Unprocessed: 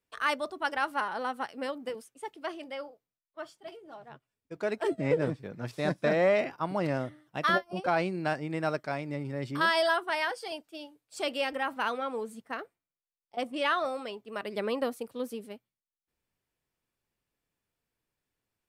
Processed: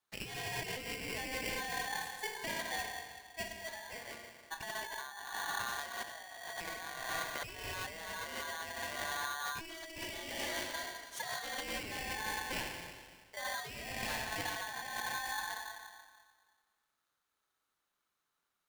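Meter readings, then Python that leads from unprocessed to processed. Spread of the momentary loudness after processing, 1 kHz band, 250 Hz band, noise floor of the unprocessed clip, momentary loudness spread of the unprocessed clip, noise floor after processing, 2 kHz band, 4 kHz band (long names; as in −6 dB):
8 LU, −8.5 dB, −15.0 dB, below −85 dBFS, 18 LU, −85 dBFS, −5.0 dB, −2.0 dB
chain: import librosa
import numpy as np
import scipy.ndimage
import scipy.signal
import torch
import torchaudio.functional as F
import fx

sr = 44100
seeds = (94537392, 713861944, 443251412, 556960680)

y = fx.rev_schroeder(x, sr, rt60_s=1.7, comb_ms=29, drr_db=1.5)
y = fx.over_compress(y, sr, threshold_db=-35.0, ratio=-1.0)
y = y * np.sign(np.sin(2.0 * np.pi * 1300.0 * np.arange(len(y)) / sr))
y = F.gain(torch.from_numpy(y), -6.5).numpy()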